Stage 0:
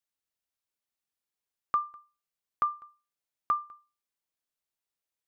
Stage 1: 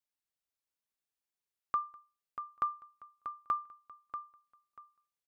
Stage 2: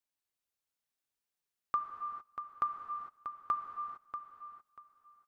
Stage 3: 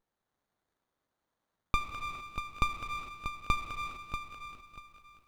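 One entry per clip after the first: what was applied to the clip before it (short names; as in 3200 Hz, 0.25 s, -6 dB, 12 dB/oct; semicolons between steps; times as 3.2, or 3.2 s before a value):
feedback echo 0.638 s, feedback 22%, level -9 dB; gain -4.5 dB
non-linear reverb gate 0.48 s flat, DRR 5 dB
bell 300 Hz -9.5 dB 1.9 oct; on a send: thin delay 0.206 s, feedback 58%, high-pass 1800 Hz, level -3 dB; on the sum: running maximum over 17 samples; gain +8 dB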